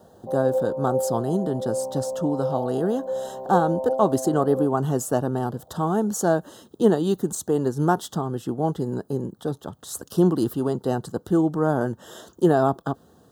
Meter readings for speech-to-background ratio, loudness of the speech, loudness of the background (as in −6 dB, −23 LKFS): 4.5 dB, −24.5 LKFS, −29.0 LKFS